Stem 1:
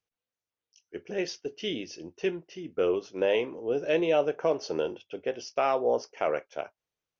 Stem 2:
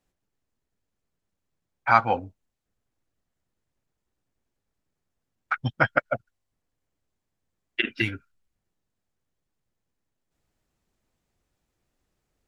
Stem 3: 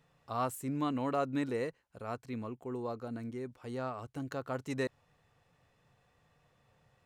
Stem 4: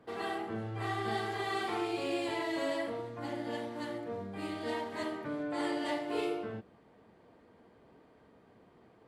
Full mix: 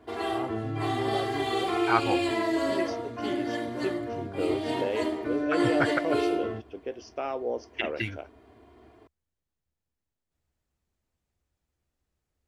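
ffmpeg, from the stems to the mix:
ffmpeg -i stem1.wav -i stem2.wav -i stem3.wav -i stem4.wav -filter_complex "[0:a]equalizer=frequency=310:width=1.5:gain=8,adelay=1600,volume=-8dB[link_01];[1:a]volume=-6.5dB[link_02];[2:a]lowpass=1100,volume=-4dB[link_03];[3:a]aecho=1:1:2.9:0.99,volume=3dB[link_04];[link_01][link_02][link_03][link_04]amix=inputs=4:normalize=0,equalizer=frequency=72:width=2.7:gain=11.5" out.wav

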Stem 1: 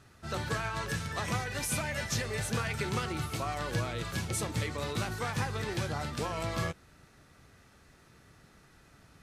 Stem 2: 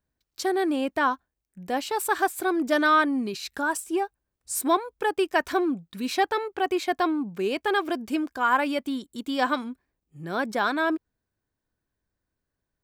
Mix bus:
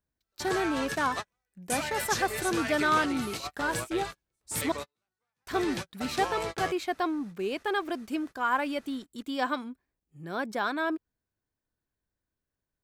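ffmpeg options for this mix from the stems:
ffmpeg -i stem1.wav -i stem2.wav -filter_complex "[0:a]equalizer=frequency=100:width=0.61:gain=-11.5,volume=2dB[link_01];[1:a]volume=-5dB,asplit=3[link_02][link_03][link_04];[link_02]atrim=end=4.72,asetpts=PTS-STARTPTS,afade=type=out:start_time=4.716:duration=0.004:curve=hsin[link_05];[link_03]atrim=start=4.72:end=5.47,asetpts=PTS-STARTPTS,volume=0[link_06];[link_04]atrim=start=5.47,asetpts=PTS-STARTPTS,afade=type=in:duration=0.004:curve=hsin[link_07];[link_05][link_06][link_07]concat=n=3:v=0:a=1,asplit=2[link_08][link_09];[link_09]apad=whole_len=406722[link_10];[link_01][link_10]sidechaingate=range=-52dB:threshold=-39dB:ratio=16:detection=peak[link_11];[link_11][link_08]amix=inputs=2:normalize=0" out.wav

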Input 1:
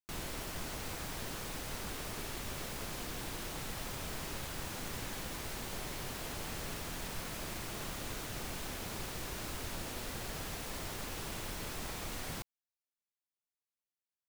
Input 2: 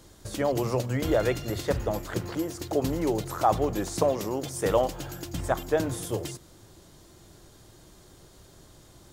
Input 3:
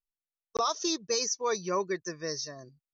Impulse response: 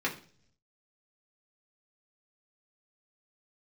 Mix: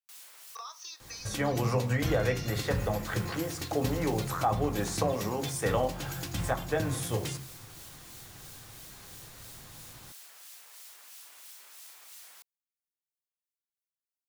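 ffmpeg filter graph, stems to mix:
-filter_complex "[0:a]highpass=930,highshelf=frequency=4500:gain=11.5,acrossover=split=2400[link_01][link_02];[link_01]aeval=exprs='val(0)*(1-0.5/2+0.5/2*cos(2*PI*3*n/s))':channel_layout=same[link_03];[link_02]aeval=exprs='val(0)*(1-0.5/2-0.5/2*cos(2*PI*3*n/s))':channel_layout=same[link_04];[link_03][link_04]amix=inputs=2:normalize=0,volume=-11dB[link_05];[1:a]equalizer=frequency=340:width=1.3:gain=-11.5,adelay=1000,volume=-1dB,asplit=2[link_06][link_07];[link_07]volume=-5dB[link_08];[2:a]highpass=frequency=920:width=0.5412,highpass=frequency=920:width=1.3066,acompressor=threshold=-36dB:ratio=6,volume=-7.5dB,asplit=3[link_09][link_10][link_11];[link_10]volume=-9dB[link_12];[link_11]apad=whole_len=630067[link_13];[link_05][link_13]sidechaincompress=threshold=-59dB:ratio=4:attack=7.1:release=170[link_14];[3:a]atrim=start_sample=2205[link_15];[link_08][link_12]amix=inputs=2:normalize=0[link_16];[link_16][link_15]afir=irnorm=-1:irlink=0[link_17];[link_14][link_06][link_09][link_17]amix=inputs=4:normalize=0,acrossover=split=430[link_18][link_19];[link_19]acompressor=threshold=-34dB:ratio=2[link_20];[link_18][link_20]amix=inputs=2:normalize=0"

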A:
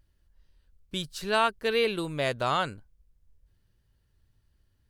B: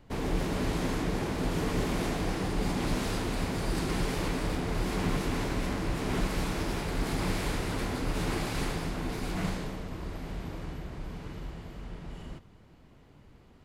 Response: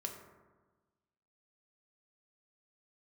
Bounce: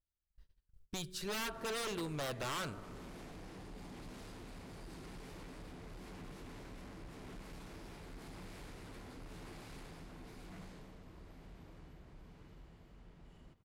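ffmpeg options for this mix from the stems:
-filter_complex "[0:a]agate=range=-28dB:threshold=-57dB:ratio=16:detection=peak,volume=-1dB,asplit=2[link_01][link_02];[link_02]volume=-12dB[link_03];[1:a]asoftclip=type=tanh:threshold=-26dB,adelay=1150,volume=-16.5dB[link_04];[2:a]atrim=start_sample=2205[link_05];[link_03][link_05]afir=irnorm=-1:irlink=0[link_06];[link_01][link_04][link_06]amix=inputs=3:normalize=0,aeval=exprs='0.0447*(abs(mod(val(0)/0.0447+3,4)-2)-1)':channel_layout=same,acompressor=threshold=-49dB:ratio=1.5"

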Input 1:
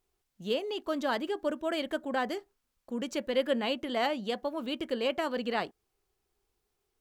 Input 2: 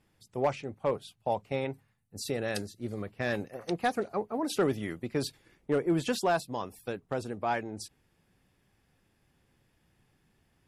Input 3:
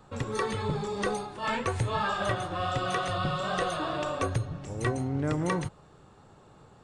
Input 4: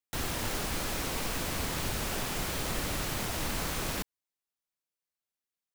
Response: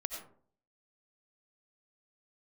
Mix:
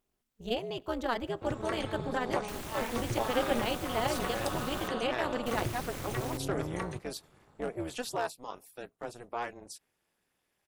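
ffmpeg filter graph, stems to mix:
-filter_complex "[0:a]volume=1dB,asplit=2[link_01][link_02];[link_02]volume=-22.5dB[link_03];[1:a]bass=frequency=250:gain=-15,treble=frequency=4000:gain=4,adelay=1900,volume=-1.5dB[link_04];[2:a]adelay=1300,volume=-5dB,asplit=2[link_05][link_06];[link_06]volume=-16dB[link_07];[3:a]adelay=2350,volume=-4.5dB,asplit=3[link_08][link_09][link_10];[link_08]atrim=end=4.88,asetpts=PTS-STARTPTS,afade=type=out:start_time=4.876:duration=0.004:curve=hsin[link_11];[link_09]atrim=start=4.88:end=5.46,asetpts=PTS-STARTPTS,volume=0[link_12];[link_10]atrim=start=5.46,asetpts=PTS-STARTPTS,afade=type=in:duration=0.004:curve=hsin[link_13];[link_11][link_12][link_13]concat=n=3:v=0:a=1[link_14];[4:a]atrim=start_sample=2205[link_15];[link_03][link_07]amix=inputs=2:normalize=0[link_16];[link_16][link_15]afir=irnorm=-1:irlink=0[link_17];[link_01][link_04][link_05][link_14][link_17]amix=inputs=5:normalize=0,equalizer=frequency=4800:width_type=o:width=0.77:gain=-2,tremolo=f=240:d=0.889"

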